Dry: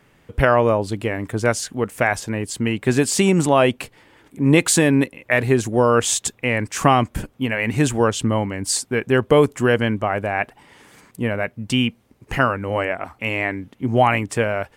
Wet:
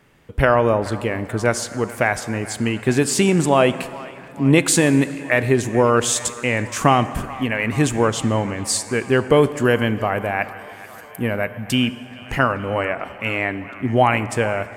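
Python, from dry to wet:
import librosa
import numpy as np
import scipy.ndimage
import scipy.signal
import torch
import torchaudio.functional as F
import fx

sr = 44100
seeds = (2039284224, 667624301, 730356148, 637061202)

y = fx.peak_eq(x, sr, hz=13000.0, db=15.0, octaves=0.42, at=(9.65, 11.75))
y = fx.echo_wet_bandpass(y, sr, ms=431, feedback_pct=74, hz=1400.0, wet_db=-17.0)
y = fx.rev_plate(y, sr, seeds[0], rt60_s=2.4, hf_ratio=0.65, predelay_ms=0, drr_db=13.5)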